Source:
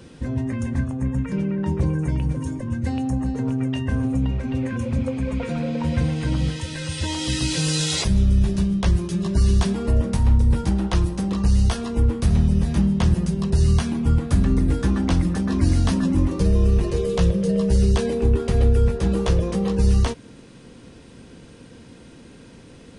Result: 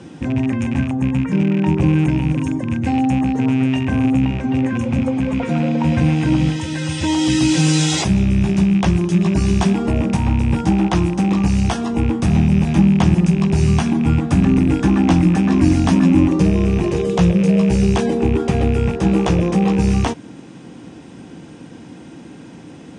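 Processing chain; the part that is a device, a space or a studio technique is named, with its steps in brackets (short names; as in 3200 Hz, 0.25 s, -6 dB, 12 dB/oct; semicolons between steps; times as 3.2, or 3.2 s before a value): car door speaker with a rattle (rattling part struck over -24 dBFS, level -26 dBFS; speaker cabinet 100–8500 Hz, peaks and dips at 170 Hz +5 dB, 310 Hz +8 dB, 470 Hz -4 dB, 790 Hz +8 dB, 4300 Hz -7 dB); gain +5 dB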